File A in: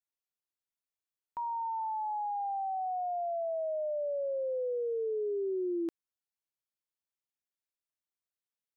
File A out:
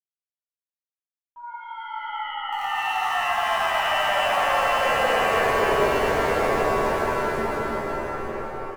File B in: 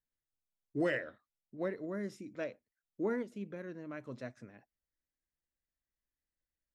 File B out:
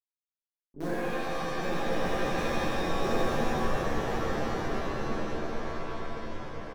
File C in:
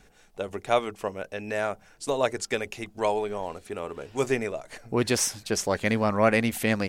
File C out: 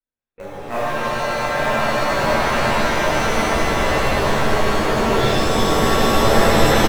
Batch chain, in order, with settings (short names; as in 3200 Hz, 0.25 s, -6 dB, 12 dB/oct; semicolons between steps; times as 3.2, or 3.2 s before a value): nonlinear frequency compression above 1300 Hz 1.5:1; speakerphone echo 0.12 s, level -15 dB; gate -48 dBFS, range -37 dB; on a send: swelling echo 0.113 s, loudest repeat 8, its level -6.5 dB; on the sum: LPC vocoder at 8 kHz pitch kept; in parallel at -11.5 dB: bit-crush 4-bit; on the sum: shimmer reverb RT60 2.6 s, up +7 st, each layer -2 dB, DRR -9 dB; gain -8.5 dB